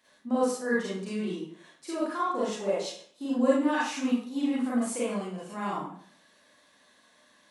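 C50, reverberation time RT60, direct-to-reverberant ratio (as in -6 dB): -1.5 dB, 0.55 s, -8.5 dB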